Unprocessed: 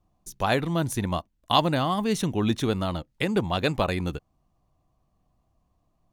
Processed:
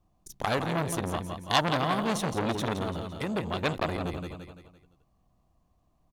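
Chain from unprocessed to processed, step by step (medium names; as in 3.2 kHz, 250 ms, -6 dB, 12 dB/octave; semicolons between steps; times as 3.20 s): 2.82–3.63 s: compression 2.5:1, threshold -26 dBFS, peak gain reduction 6 dB; on a send: feedback delay 170 ms, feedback 43%, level -8 dB; on the sum: transformer saturation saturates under 2.9 kHz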